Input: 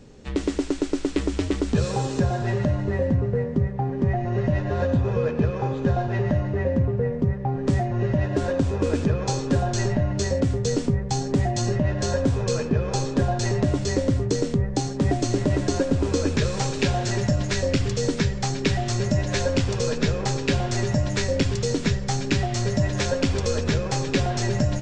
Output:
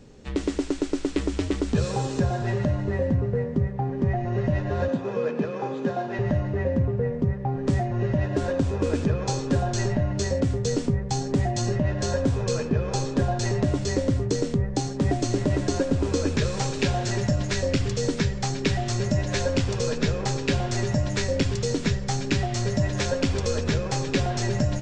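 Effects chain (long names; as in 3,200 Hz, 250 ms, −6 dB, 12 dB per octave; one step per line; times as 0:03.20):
0:04.88–0:06.19: high-pass filter 180 Hz 24 dB per octave
level −1.5 dB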